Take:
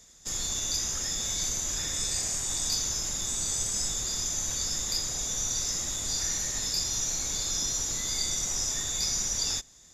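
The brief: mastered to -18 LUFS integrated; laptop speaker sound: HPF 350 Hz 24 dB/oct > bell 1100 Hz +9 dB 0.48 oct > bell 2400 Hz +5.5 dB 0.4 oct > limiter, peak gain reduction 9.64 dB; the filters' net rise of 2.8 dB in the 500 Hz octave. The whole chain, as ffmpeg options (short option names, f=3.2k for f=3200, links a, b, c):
-af "highpass=f=350:w=0.5412,highpass=f=350:w=1.3066,equalizer=f=500:t=o:g=3.5,equalizer=f=1.1k:t=o:w=0.48:g=9,equalizer=f=2.4k:t=o:w=0.4:g=5.5,volume=14.5dB,alimiter=limit=-11.5dB:level=0:latency=1"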